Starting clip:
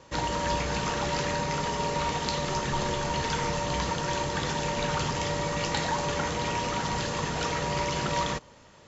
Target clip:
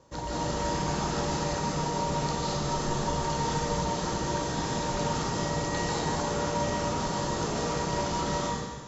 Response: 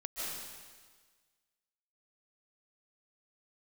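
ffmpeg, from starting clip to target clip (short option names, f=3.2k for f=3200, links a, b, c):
-filter_complex "[0:a]equalizer=f=2.4k:t=o:w=1.5:g=-10[a];[1:a]atrim=start_sample=2205[b];[a][b]afir=irnorm=-1:irlink=0"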